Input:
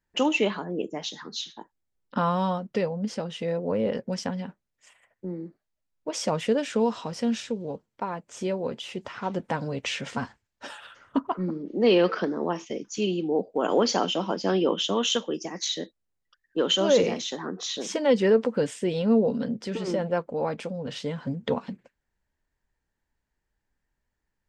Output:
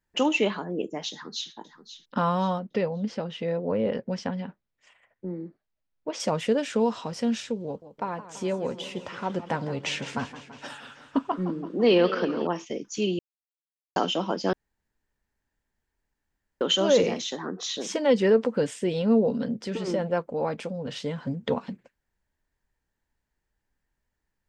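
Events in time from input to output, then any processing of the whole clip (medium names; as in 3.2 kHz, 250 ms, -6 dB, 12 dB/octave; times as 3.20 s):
1.11–1.52 s: echo throw 530 ms, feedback 35%, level -12 dB
2.59–6.20 s: low-pass 4.3 kHz
7.65–12.47 s: modulated delay 167 ms, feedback 69%, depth 134 cents, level -14 dB
13.19–13.96 s: mute
14.53–16.61 s: room tone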